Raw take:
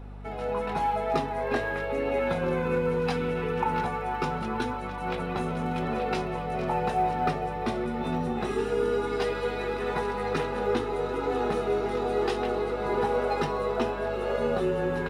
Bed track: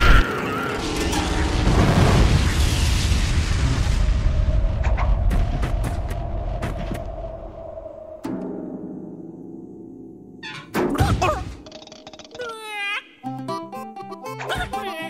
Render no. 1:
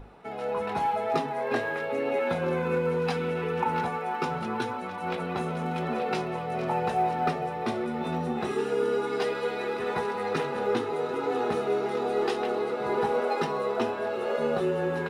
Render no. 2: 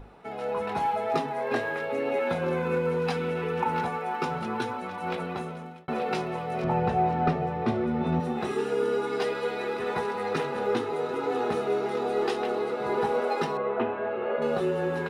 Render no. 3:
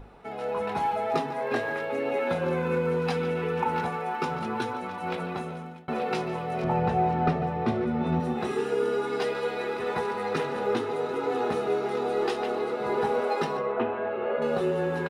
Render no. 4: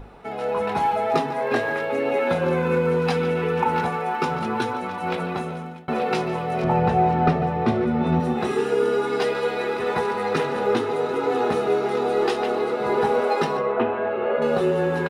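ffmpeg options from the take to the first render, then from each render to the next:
-af "bandreject=f=50:t=h:w=6,bandreject=f=100:t=h:w=6,bandreject=f=150:t=h:w=6,bandreject=f=200:t=h:w=6,bandreject=f=250:t=h:w=6,bandreject=f=300:t=h:w=6"
-filter_complex "[0:a]asettb=1/sr,asplit=3[a][b][c];[a]atrim=end=6.644[d];[b]atrim=start=6.64:end=8.2,asetpts=PTS-STARTPTS,afade=t=in:d=0.004:c=qsin,afade=t=out:st=1.556:d=0.004:c=qsin,aemphasis=mode=reproduction:type=bsi[e];[c]atrim=start=8.196[f];[d][e]acrossfade=d=0.004:c1=hsin:c2=qsin[g];[g][f]acrossfade=d=0.004:c1=qsin:c2=hsin,asettb=1/sr,asplit=3[h][i][j];[h]atrim=end=13.574[k];[i]atrim=start=13.57:end=14.42,asetpts=PTS-STARTPTS,afade=t=in:d=0.004:c=qsin,afade=t=out:st=0.846:d=0.004:c=qsin,lowpass=f=2.7k:w=0.5412,lowpass=f=2.7k:w=1.3066[l];[j]atrim=start=14.416[m];[k][l]acrossfade=d=0.004:c1=hsin:c2=qsin[n];[n][m]acrossfade=d=0.004:c1=qsin:c2=hsin,asplit=2[o][p];[o]atrim=end=5.88,asetpts=PTS-STARTPTS,afade=t=out:st=5.18:d=0.7[q];[p]atrim=start=5.88,asetpts=PTS-STARTPTS,afade=t=in:d=0.004:c=hsin[r];[q][r]concat=n=2:v=0:a=1"
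-filter_complex "[0:a]asplit=2[a][b];[b]adelay=145.8,volume=-14dB,highshelf=f=4k:g=-3.28[c];[a][c]amix=inputs=2:normalize=0"
-af "volume=5.5dB"

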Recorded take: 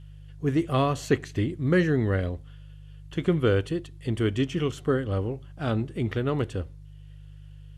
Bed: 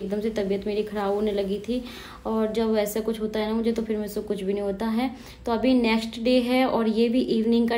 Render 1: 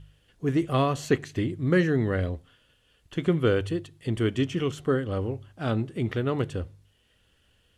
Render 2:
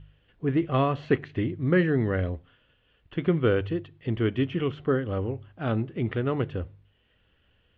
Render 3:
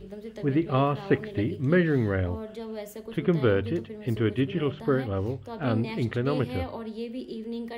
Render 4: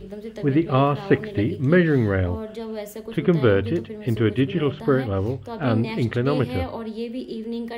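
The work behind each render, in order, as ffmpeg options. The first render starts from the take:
-af "bandreject=f=50:t=h:w=4,bandreject=f=100:t=h:w=4,bandreject=f=150:t=h:w=4"
-af "lowpass=f=3.1k:w=0.5412,lowpass=f=3.1k:w=1.3066"
-filter_complex "[1:a]volume=-13.5dB[a];[0:a][a]amix=inputs=2:normalize=0"
-af "volume=5dB"

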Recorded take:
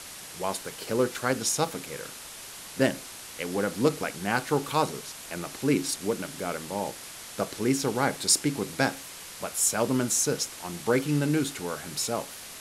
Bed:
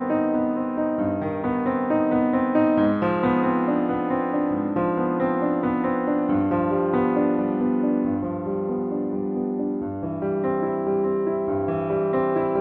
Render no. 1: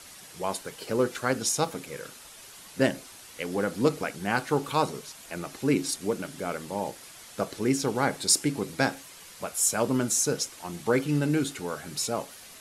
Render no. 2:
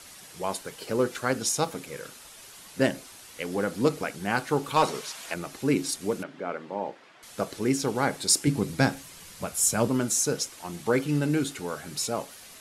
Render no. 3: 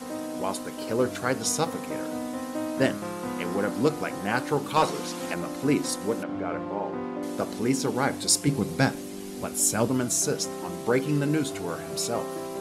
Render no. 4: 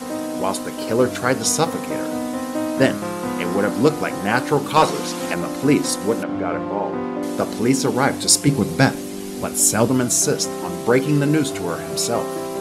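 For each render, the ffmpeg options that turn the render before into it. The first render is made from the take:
-af "afftdn=nr=7:nf=-43"
-filter_complex "[0:a]asettb=1/sr,asplit=3[a][b][c];[a]atrim=end=4.764[d];[b]atrim=start=4.76:end=5.34,asetpts=PTS-STARTPTS,afade=t=in:d=0.004:c=qsin,afade=t=out:st=0.576:d=0.004:c=qsin,asplit=2[e][f];[f]highpass=f=720:p=1,volume=14dB,asoftclip=type=tanh:threshold=-10dB[g];[e][g]amix=inputs=2:normalize=0,lowpass=f=5k:p=1,volume=-6dB[h];[c]atrim=start=5.336[i];[d][h]acrossfade=d=0.004:c1=hsin:c2=qsin[j];[j][i]acrossfade=d=0.004:c1=qsin:c2=hsin,asettb=1/sr,asplit=3[k][l][m];[k]atrim=end=6.234[n];[l]atrim=start=6.23:end=7.23,asetpts=PTS-STARTPTS,afade=t=in:d=0.004:c=qsin,afade=t=out:st=0.996:d=0.004:c=qsin,highpass=230,lowpass=2.3k[o];[m]atrim=start=7.226[p];[n][o]acrossfade=d=0.004:c1=hsin:c2=qsin[q];[q][p]acrossfade=d=0.004:c1=qsin:c2=hsin,asettb=1/sr,asplit=3[r][s][t];[r]atrim=end=8.474[u];[s]atrim=start=8.47:end=9.88,asetpts=PTS-STARTPTS,afade=t=in:d=0.004:c=qsin,afade=t=out:st=1.406:d=0.004:c=qsin,bass=f=250:g=9,treble=f=4k:g=1[v];[t]atrim=start=9.876[w];[u][v]acrossfade=d=0.004:c1=hsin:c2=qsin[x];[x][w]acrossfade=d=0.004:c1=qsin:c2=hsin"
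-filter_complex "[1:a]volume=-12dB[a];[0:a][a]amix=inputs=2:normalize=0"
-af "volume=7.5dB,alimiter=limit=-1dB:level=0:latency=1"

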